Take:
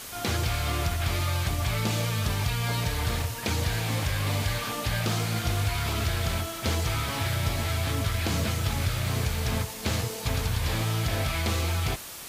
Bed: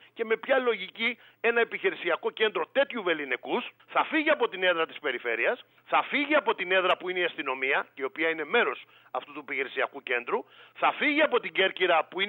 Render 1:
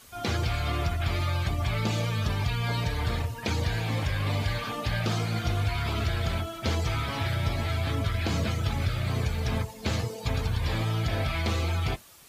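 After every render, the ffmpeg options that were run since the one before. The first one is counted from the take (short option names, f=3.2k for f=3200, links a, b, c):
-af "afftdn=nr=13:nf=-37"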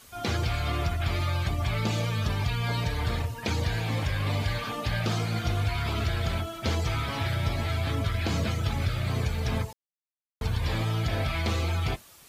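-filter_complex "[0:a]asplit=3[a][b][c];[a]atrim=end=9.73,asetpts=PTS-STARTPTS,afade=t=out:st=9.726:d=0.004:c=hsin[d];[b]atrim=start=9.73:end=10.41,asetpts=PTS-STARTPTS,volume=0[e];[c]atrim=start=10.41,asetpts=PTS-STARTPTS,afade=t=in:d=0.004:c=hsin[f];[d][e][f]concat=n=3:v=0:a=1"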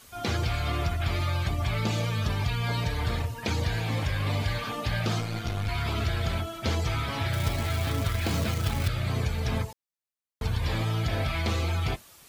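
-filter_complex "[0:a]asettb=1/sr,asplit=3[a][b][c];[a]atrim=end=5.204[d];[b]atrim=start=5.2:end=5.69,asetpts=PTS-STARTPTS,afade=t=in:d=0.004:c=qsin,afade=t=out:st=0.486:d=0.004:c=qsin,aeval=exprs='(tanh(12.6*val(0)+0.6)-tanh(0.6))/12.6':c=same[e];[c]atrim=start=5.686[f];[d][e]acrossfade=d=0.004:c1=hsin:c2=qsin[g];[g][f]acrossfade=d=0.004:c1=qsin:c2=hsin,asettb=1/sr,asplit=3[h][i][j];[h]atrim=end=7.334[k];[i]atrim=start=7.33:end=8.88,asetpts=PTS-STARTPTS,afade=t=in:d=0.004:c=qsin,afade=t=out:st=1.546:d=0.004:c=qsin,acrusher=bits=3:mode=log:mix=0:aa=0.000001[l];[j]atrim=start=8.876[m];[k][l]acrossfade=d=0.004:c1=hsin:c2=qsin[n];[n][m]acrossfade=d=0.004:c1=qsin:c2=hsin"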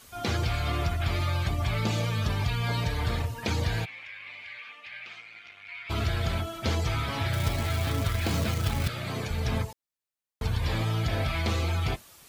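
-filter_complex "[0:a]asplit=3[a][b][c];[a]afade=t=out:st=3.84:d=0.02[d];[b]bandpass=f=2.3k:t=q:w=4.6,afade=t=in:st=3.84:d=0.02,afade=t=out:st=5.89:d=0.02[e];[c]afade=t=in:st=5.89:d=0.02[f];[d][e][f]amix=inputs=3:normalize=0,asettb=1/sr,asplit=3[g][h][i];[g]atrim=end=8.874[j];[h]atrim=start=8.87:end=9.3,asetpts=PTS-STARTPTS,afade=t=in:d=0.004:c=qsin,afade=t=out:st=0.426:d=0.004:c=qsin,highpass=160[k];[i]atrim=start=9.296[l];[j][k]acrossfade=d=0.004:c1=hsin:c2=qsin[m];[m][l]acrossfade=d=0.004:c1=qsin:c2=hsin"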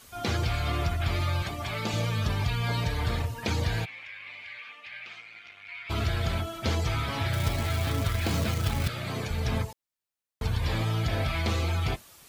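-filter_complex "[0:a]asettb=1/sr,asplit=3[a][b][c];[a]atrim=end=1.424[d];[b]atrim=start=1.42:end=1.94,asetpts=PTS-STARTPTS,afade=t=in:d=0.004:c=qsin,afade=t=out:st=0.516:d=0.004:c=qsin,highpass=f=240:p=1[e];[c]atrim=start=1.936[f];[d][e]acrossfade=d=0.004:c1=hsin:c2=qsin[g];[g][f]acrossfade=d=0.004:c1=qsin:c2=hsin"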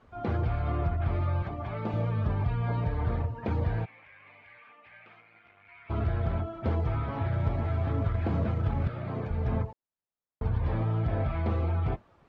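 -af "lowpass=1.1k"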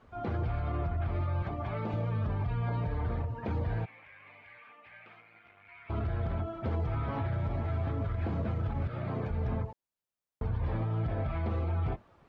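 -af "alimiter=level_in=0.5dB:limit=-24dB:level=0:latency=1:release=72,volume=-0.5dB"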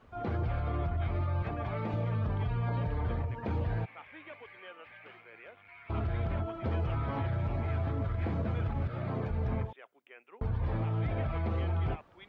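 -filter_complex "[1:a]volume=-25.5dB[a];[0:a][a]amix=inputs=2:normalize=0"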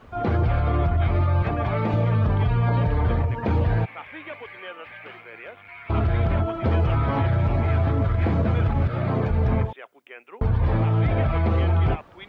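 -af "volume=11dB"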